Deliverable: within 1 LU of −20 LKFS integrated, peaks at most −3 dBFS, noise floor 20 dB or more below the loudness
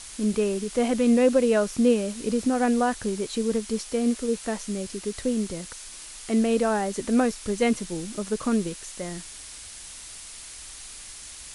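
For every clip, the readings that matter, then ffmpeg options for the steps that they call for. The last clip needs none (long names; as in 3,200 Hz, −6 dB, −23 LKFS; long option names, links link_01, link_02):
background noise floor −42 dBFS; target noise floor −45 dBFS; integrated loudness −25.0 LKFS; sample peak −9.0 dBFS; target loudness −20.0 LKFS
→ -af "afftdn=noise_reduction=6:noise_floor=-42"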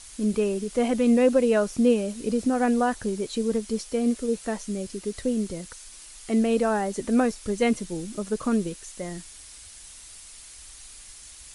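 background noise floor −46 dBFS; integrated loudness −25.5 LKFS; sample peak −9.0 dBFS; target loudness −20.0 LKFS
→ -af "volume=5.5dB"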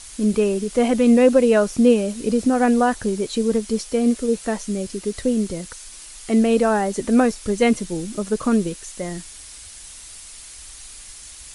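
integrated loudness −20.0 LKFS; sample peak −3.5 dBFS; background noise floor −40 dBFS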